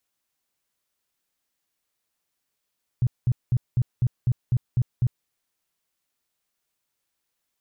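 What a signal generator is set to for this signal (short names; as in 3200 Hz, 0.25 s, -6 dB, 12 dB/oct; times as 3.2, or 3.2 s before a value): tone bursts 123 Hz, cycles 6, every 0.25 s, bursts 9, -16.5 dBFS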